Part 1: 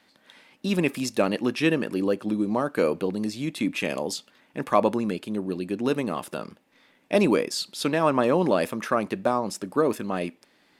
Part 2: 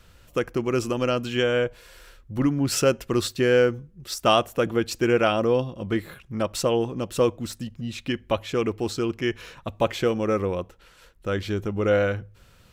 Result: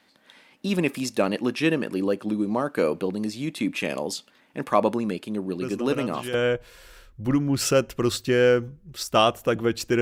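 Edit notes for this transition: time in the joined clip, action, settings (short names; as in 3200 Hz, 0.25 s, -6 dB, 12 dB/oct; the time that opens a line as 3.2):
part 1
5.61 add part 2 from 0.72 s 0.73 s -9.5 dB
6.34 switch to part 2 from 1.45 s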